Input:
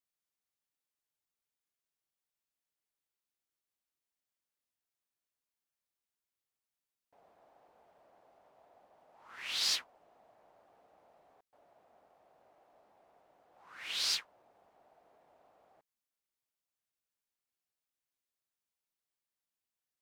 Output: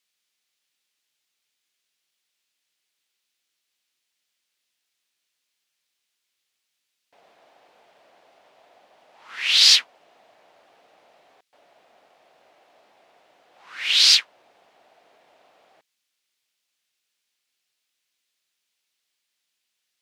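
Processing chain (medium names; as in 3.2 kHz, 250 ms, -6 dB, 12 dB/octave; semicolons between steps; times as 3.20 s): frequency weighting D; trim +8 dB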